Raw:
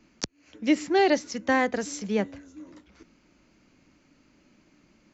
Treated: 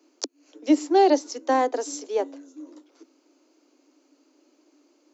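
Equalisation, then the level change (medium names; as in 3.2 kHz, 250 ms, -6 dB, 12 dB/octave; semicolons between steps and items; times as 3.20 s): steep high-pass 270 Hz 96 dB/octave; dynamic bell 890 Hz, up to +6 dB, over -41 dBFS, Q 2.1; peaking EQ 2 kHz -13.5 dB 1.5 oct; +4.0 dB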